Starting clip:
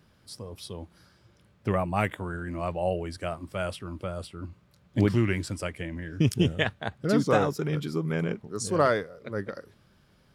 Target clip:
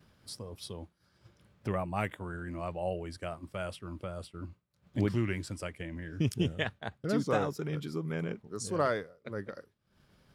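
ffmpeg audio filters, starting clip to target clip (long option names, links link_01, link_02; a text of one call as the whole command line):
ffmpeg -i in.wav -af "acompressor=mode=upward:threshold=-28dB:ratio=2.5,agate=range=-33dB:threshold=-34dB:ratio=3:detection=peak,volume=-6.5dB" out.wav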